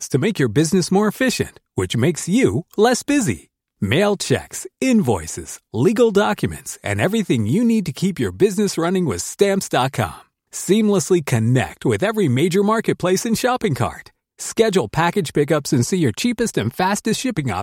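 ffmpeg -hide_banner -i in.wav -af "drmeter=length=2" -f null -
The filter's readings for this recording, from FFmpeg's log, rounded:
Channel 1: DR: 12.9
Overall DR: 12.9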